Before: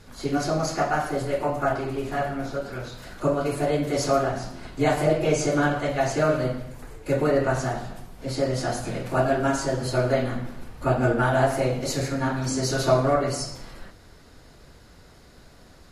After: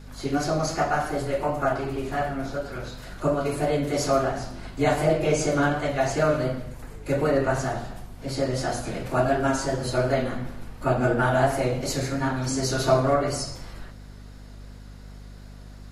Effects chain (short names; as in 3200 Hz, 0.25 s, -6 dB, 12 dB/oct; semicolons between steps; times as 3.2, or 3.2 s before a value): notches 60/120/180/240/300/360/420/480/540 Hz; vibrato 2.8 Hz 34 cents; hum 50 Hz, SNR 17 dB